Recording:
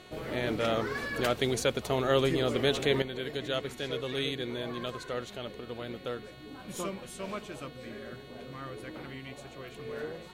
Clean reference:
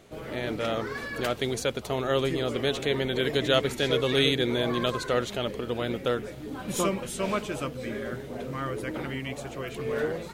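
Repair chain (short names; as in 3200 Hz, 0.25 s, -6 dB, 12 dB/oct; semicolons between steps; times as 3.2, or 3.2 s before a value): de-hum 365.4 Hz, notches 12; gain 0 dB, from 3.02 s +9.5 dB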